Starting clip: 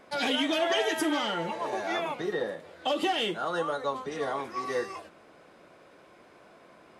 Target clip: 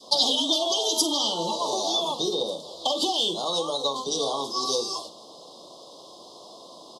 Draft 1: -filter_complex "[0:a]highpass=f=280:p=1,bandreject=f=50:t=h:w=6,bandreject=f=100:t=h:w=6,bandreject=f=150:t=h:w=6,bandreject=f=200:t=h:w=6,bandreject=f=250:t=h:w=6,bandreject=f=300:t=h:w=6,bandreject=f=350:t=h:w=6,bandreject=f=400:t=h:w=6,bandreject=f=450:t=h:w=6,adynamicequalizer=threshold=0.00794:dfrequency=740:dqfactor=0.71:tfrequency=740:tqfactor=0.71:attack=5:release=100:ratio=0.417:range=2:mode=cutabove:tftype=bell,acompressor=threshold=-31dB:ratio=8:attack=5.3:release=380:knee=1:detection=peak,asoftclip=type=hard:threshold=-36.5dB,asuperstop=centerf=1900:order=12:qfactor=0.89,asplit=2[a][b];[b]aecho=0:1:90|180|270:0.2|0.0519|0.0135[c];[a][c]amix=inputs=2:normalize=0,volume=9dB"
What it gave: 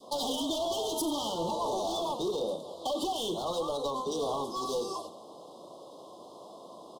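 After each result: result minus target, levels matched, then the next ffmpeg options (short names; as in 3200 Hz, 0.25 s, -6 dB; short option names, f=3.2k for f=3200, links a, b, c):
echo 40 ms late; hard clip: distortion +24 dB; 4000 Hz band -5.5 dB
-filter_complex "[0:a]highpass=f=280:p=1,bandreject=f=50:t=h:w=6,bandreject=f=100:t=h:w=6,bandreject=f=150:t=h:w=6,bandreject=f=200:t=h:w=6,bandreject=f=250:t=h:w=6,bandreject=f=300:t=h:w=6,bandreject=f=350:t=h:w=6,bandreject=f=400:t=h:w=6,bandreject=f=450:t=h:w=6,adynamicequalizer=threshold=0.00794:dfrequency=740:dqfactor=0.71:tfrequency=740:tqfactor=0.71:attack=5:release=100:ratio=0.417:range=2:mode=cutabove:tftype=bell,acompressor=threshold=-31dB:ratio=8:attack=5.3:release=380:knee=1:detection=peak,asoftclip=type=hard:threshold=-36.5dB,asuperstop=centerf=1900:order=12:qfactor=0.89,asplit=2[a][b];[b]aecho=0:1:50|100|150:0.2|0.0519|0.0135[c];[a][c]amix=inputs=2:normalize=0,volume=9dB"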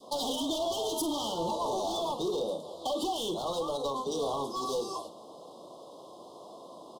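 hard clip: distortion +24 dB; 4000 Hz band -5.5 dB
-filter_complex "[0:a]highpass=f=280:p=1,bandreject=f=50:t=h:w=6,bandreject=f=100:t=h:w=6,bandreject=f=150:t=h:w=6,bandreject=f=200:t=h:w=6,bandreject=f=250:t=h:w=6,bandreject=f=300:t=h:w=6,bandreject=f=350:t=h:w=6,bandreject=f=400:t=h:w=6,bandreject=f=450:t=h:w=6,adynamicequalizer=threshold=0.00794:dfrequency=740:dqfactor=0.71:tfrequency=740:tqfactor=0.71:attack=5:release=100:ratio=0.417:range=2:mode=cutabove:tftype=bell,acompressor=threshold=-31dB:ratio=8:attack=5.3:release=380:knee=1:detection=peak,asoftclip=type=hard:threshold=-27dB,asuperstop=centerf=1900:order=12:qfactor=0.89,asplit=2[a][b];[b]aecho=0:1:50|100|150:0.2|0.0519|0.0135[c];[a][c]amix=inputs=2:normalize=0,volume=9dB"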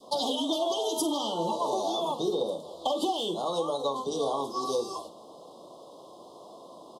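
4000 Hz band -5.5 dB
-filter_complex "[0:a]highpass=f=280:p=1,bandreject=f=50:t=h:w=6,bandreject=f=100:t=h:w=6,bandreject=f=150:t=h:w=6,bandreject=f=200:t=h:w=6,bandreject=f=250:t=h:w=6,bandreject=f=300:t=h:w=6,bandreject=f=350:t=h:w=6,bandreject=f=400:t=h:w=6,bandreject=f=450:t=h:w=6,adynamicequalizer=threshold=0.00794:dfrequency=740:dqfactor=0.71:tfrequency=740:tqfactor=0.71:attack=5:release=100:ratio=0.417:range=2:mode=cutabove:tftype=bell,acompressor=threshold=-31dB:ratio=8:attack=5.3:release=380:knee=1:detection=peak,asoftclip=type=hard:threshold=-27dB,asuperstop=centerf=1900:order=12:qfactor=0.89,equalizer=f=4.9k:w=0.78:g=14.5,asplit=2[a][b];[b]aecho=0:1:50|100|150:0.2|0.0519|0.0135[c];[a][c]amix=inputs=2:normalize=0,volume=9dB"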